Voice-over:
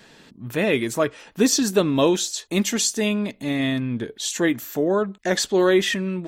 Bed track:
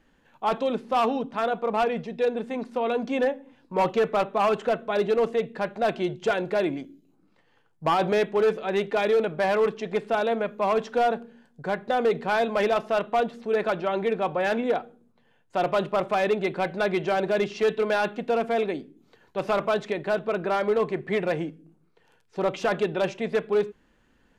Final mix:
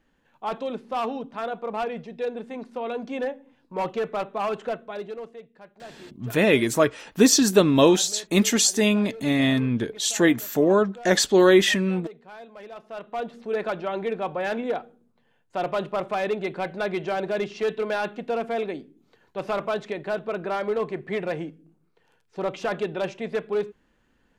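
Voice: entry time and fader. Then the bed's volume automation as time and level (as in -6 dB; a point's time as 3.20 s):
5.80 s, +2.0 dB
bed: 4.71 s -4.5 dB
5.49 s -19.5 dB
12.65 s -19.5 dB
13.37 s -2.5 dB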